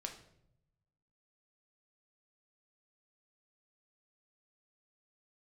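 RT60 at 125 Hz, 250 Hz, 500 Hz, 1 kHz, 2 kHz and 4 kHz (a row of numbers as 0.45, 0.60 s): 1.5, 1.2, 0.85, 0.65, 0.60, 0.55 s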